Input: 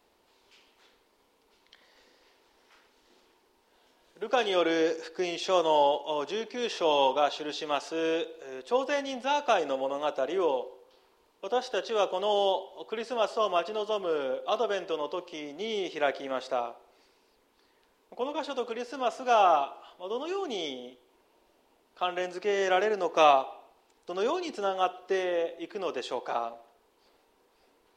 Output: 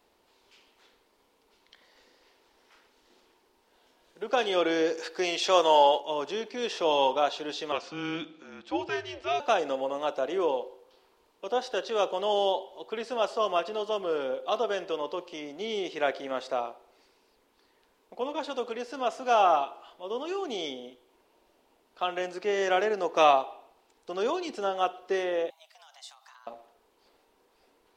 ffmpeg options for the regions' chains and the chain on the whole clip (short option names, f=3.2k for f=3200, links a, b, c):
-filter_complex "[0:a]asettb=1/sr,asplit=3[a][b][c];[a]atrim=end=4.974[d];[b]atrim=start=4.97:end=6,asetpts=PTS-STARTPTS,afade=t=in:d=0.004:c=qsin,afade=t=out:st=1.026:d=0.004:c=qsin,lowshelf=f=360:g=-10.5,acontrast=46[e];[c]atrim=start=5.996[f];[d][e]acrossfade=d=0.004:c1=hsin:c2=qsin[g];[g][f]acrossfade=d=0.004:c1=qsin:c2=hsin,asettb=1/sr,asplit=3[h][i][j];[h]atrim=end=7.724[k];[i]atrim=start=7.72:end=9.4,asetpts=PTS-STARTPTS,afade=t=in:d=0.004:c=qsin,afade=t=out:st=1.676:d=0.004:c=qsin,highpass=620,lowpass=5k,afreqshift=-170[l];[j]atrim=start=9.396[m];[k][l]acrossfade=d=0.004:c1=hsin:c2=qsin[n];[n][m]acrossfade=d=0.004:c1=qsin:c2=hsin,asettb=1/sr,asplit=3[o][p][q];[o]atrim=end=25.504[r];[p]atrim=start=25.5:end=26.47,asetpts=PTS-STARTPTS,afade=t=in:d=0.004:c=qsin,afade=t=out:st=0.966:d=0.004:c=qsin,acompressor=threshold=-34dB:ratio=10:attack=3.2:release=140:knee=1:detection=peak,afreqshift=300,aderivative[s];[q]atrim=start=26.466[t];[r][s]acrossfade=d=0.004:c1=hsin:c2=qsin[u];[u][t]acrossfade=d=0.004:c1=qsin:c2=hsin"